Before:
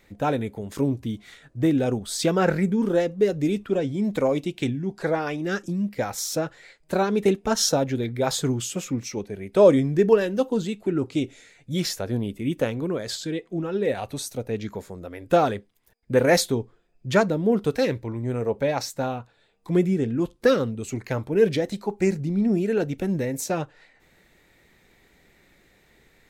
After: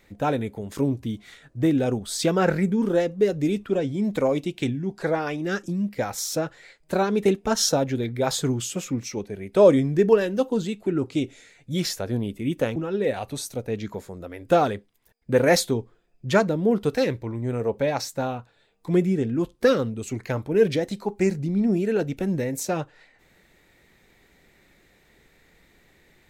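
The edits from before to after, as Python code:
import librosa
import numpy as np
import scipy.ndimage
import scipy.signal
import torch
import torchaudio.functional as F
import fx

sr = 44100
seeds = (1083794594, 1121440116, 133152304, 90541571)

y = fx.edit(x, sr, fx.cut(start_s=12.76, length_s=0.81), tone=tone)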